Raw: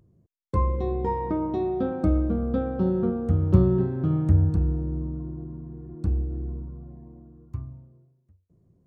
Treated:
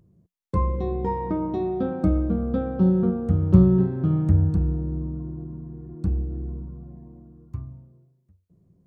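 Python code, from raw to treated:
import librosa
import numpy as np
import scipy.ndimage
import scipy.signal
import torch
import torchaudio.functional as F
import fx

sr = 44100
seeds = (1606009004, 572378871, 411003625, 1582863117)

y = fx.peak_eq(x, sr, hz=180.0, db=7.5, octaves=0.28)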